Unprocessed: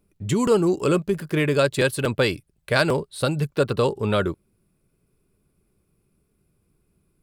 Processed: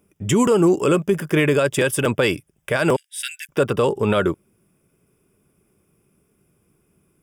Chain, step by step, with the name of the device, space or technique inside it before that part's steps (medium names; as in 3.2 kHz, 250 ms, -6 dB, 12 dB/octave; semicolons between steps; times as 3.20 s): 2.96–3.49 s: steep high-pass 1.6 kHz 96 dB/octave; PA system with an anti-feedback notch (high-pass 160 Hz 6 dB/octave; Butterworth band-stop 4.2 kHz, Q 3.3; peak limiter -16 dBFS, peak gain reduction 11 dB); trim +7.5 dB